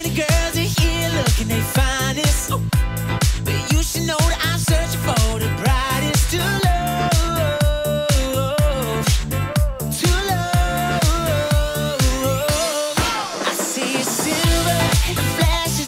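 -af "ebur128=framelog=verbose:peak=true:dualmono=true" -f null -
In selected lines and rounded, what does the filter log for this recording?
Integrated loudness:
  I:         -15.9 LUFS
  Threshold: -25.8 LUFS
Loudness range:
  LRA:         0.8 LU
  Threshold: -36.0 LUFS
  LRA low:   -16.3 LUFS
  LRA high:  -15.6 LUFS
True peak:
  Peak:       -7.3 dBFS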